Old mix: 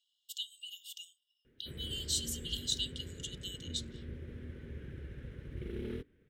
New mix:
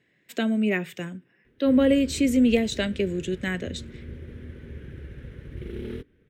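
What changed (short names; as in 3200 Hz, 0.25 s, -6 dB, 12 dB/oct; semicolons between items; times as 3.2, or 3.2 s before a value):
speech: remove brick-wall FIR high-pass 2800 Hz; background +5.5 dB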